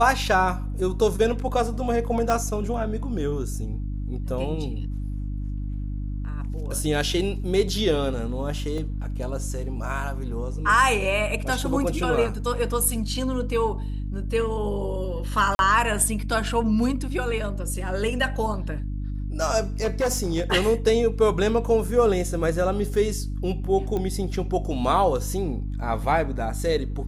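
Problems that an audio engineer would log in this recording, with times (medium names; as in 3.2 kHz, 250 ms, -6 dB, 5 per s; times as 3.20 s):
hum 50 Hz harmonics 6 -29 dBFS
2.30 s: pop -11 dBFS
8.78 s: dropout 2.5 ms
15.55–15.59 s: dropout 41 ms
19.80–20.42 s: clipped -18.5 dBFS
23.97 s: pop -17 dBFS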